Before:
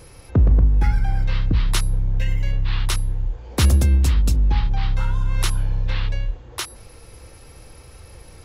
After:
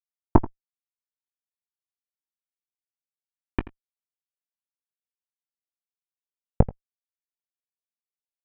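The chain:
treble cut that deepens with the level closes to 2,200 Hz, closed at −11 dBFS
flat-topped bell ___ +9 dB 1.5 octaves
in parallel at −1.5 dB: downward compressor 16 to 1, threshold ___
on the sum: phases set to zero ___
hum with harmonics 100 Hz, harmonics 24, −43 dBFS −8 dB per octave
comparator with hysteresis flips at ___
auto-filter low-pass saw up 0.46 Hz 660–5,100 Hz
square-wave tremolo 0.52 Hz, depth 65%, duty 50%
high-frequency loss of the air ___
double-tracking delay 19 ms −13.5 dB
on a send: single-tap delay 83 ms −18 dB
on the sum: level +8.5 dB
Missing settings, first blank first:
2,000 Hz, −22 dBFS, 327 Hz, −14.5 dBFS, 410 metres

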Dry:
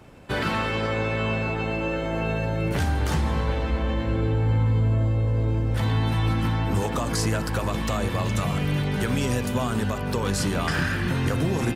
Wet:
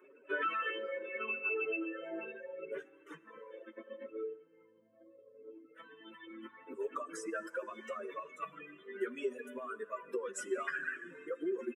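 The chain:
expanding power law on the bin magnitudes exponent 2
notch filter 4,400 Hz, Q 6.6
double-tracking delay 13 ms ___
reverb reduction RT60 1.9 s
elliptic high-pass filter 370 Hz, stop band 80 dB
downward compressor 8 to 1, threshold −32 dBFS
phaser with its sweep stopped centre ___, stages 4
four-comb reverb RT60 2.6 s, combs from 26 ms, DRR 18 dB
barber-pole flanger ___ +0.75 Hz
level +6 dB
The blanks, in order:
−8.5 dB, 1,900 Hz, 5 ms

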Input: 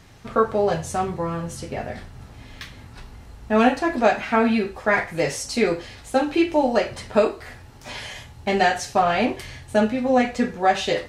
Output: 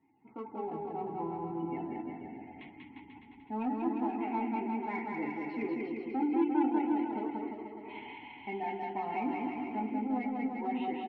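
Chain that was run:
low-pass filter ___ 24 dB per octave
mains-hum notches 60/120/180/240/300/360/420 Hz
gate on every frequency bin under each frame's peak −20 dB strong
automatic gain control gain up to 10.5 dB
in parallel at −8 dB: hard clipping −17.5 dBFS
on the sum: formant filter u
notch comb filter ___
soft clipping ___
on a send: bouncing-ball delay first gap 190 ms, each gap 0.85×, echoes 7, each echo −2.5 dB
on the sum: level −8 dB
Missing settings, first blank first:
3,300 Hz, 1,200 Hz, −15.5 dBFS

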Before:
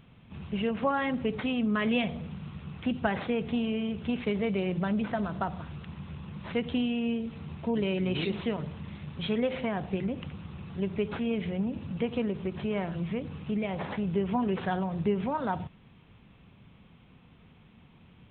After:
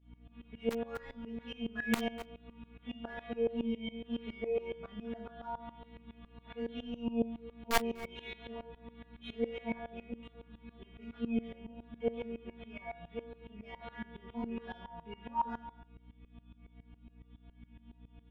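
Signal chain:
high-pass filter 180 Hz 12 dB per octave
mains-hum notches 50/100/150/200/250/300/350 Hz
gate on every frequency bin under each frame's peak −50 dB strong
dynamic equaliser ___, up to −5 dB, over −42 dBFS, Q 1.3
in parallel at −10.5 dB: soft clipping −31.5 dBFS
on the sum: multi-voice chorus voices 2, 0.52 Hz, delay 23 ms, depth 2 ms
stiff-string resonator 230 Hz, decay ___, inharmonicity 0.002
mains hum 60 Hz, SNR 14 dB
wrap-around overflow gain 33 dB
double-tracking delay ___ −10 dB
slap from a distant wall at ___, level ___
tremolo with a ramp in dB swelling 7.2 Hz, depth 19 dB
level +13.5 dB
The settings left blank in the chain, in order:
250 Hz, 0.66 s, 13 ms, 42 metres, −18 dB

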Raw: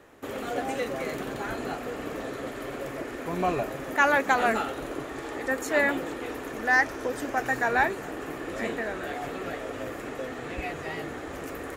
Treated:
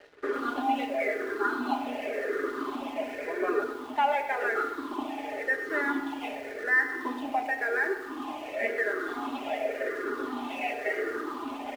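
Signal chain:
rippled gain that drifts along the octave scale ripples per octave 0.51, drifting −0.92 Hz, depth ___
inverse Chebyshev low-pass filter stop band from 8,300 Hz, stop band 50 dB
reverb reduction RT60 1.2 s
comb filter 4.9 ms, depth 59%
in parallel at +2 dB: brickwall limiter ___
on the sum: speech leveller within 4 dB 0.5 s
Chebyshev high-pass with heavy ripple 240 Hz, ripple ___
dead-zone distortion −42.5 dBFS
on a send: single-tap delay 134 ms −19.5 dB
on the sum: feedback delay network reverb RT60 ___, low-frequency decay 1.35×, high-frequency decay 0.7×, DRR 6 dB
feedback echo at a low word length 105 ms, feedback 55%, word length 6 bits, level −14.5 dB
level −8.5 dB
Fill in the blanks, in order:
16 dB, −16.5 dBFS, 3 dB, 1 s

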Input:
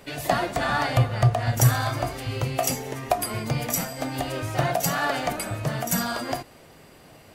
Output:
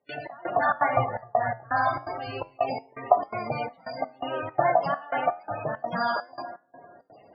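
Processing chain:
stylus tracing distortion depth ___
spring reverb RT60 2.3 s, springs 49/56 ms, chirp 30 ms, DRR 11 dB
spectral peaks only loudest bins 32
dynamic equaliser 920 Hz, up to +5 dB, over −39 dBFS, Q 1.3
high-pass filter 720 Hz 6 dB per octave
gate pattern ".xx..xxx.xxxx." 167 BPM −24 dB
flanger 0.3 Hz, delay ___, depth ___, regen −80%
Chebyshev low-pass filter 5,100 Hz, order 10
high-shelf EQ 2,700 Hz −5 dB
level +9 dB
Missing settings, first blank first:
0.49 ms, 7.8 ms, 5.2 ms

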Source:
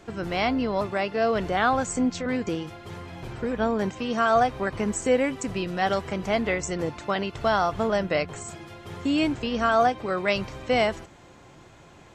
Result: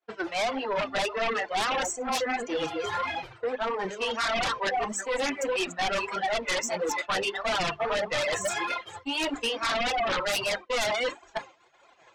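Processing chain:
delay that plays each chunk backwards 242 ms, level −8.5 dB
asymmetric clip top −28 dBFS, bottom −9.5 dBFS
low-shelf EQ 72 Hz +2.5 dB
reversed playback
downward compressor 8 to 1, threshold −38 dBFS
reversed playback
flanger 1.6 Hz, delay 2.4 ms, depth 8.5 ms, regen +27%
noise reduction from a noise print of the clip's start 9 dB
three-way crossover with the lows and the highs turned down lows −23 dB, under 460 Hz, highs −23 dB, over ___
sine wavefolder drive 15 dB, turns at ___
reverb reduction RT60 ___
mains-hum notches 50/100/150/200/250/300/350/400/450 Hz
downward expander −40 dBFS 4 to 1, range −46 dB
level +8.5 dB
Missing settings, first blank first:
6,000 Hz, −31.5 dBFS, 0.61 s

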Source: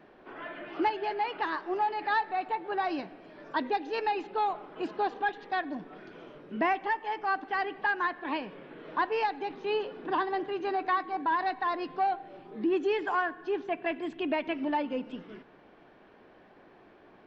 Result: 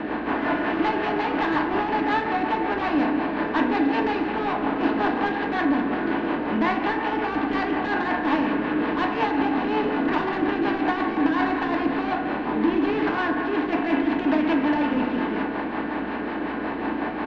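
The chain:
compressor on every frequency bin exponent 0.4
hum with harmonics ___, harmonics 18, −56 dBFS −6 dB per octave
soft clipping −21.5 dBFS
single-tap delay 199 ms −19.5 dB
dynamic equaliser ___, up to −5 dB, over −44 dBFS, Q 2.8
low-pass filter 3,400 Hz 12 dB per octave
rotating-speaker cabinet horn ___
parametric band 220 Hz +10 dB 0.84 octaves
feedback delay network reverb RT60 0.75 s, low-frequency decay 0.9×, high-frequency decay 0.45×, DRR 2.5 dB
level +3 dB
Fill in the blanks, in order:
60 Hz, 420 Hz, 5.5 Hz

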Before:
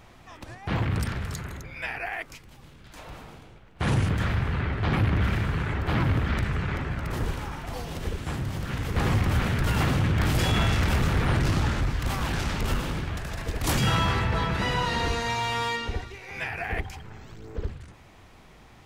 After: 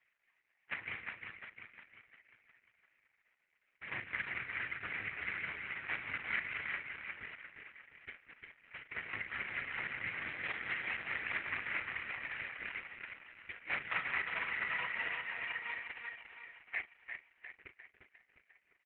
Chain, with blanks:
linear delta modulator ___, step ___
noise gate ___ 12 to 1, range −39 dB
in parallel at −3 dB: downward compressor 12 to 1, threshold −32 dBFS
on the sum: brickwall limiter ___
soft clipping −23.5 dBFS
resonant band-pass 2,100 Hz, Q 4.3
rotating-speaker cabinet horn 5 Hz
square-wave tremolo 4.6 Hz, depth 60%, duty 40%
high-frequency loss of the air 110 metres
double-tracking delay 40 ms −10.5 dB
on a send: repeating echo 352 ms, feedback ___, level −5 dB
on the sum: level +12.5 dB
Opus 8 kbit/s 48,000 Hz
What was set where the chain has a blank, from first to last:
16 kbit/s, −29.5 dBFS, −25 dBFS, −18.5 dBFS, 51%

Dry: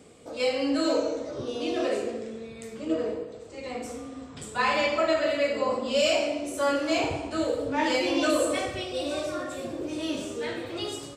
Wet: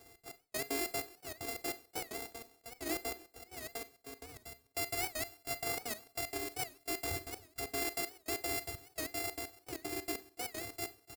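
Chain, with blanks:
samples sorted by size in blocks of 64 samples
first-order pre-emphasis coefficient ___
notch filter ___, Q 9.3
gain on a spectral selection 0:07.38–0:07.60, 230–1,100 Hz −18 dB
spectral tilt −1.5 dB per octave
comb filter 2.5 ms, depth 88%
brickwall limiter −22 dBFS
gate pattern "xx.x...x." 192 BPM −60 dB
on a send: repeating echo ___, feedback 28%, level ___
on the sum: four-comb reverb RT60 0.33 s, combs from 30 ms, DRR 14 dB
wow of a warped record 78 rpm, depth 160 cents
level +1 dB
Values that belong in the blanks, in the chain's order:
0.8, 2,900 Hz, 291 ms, −21 dB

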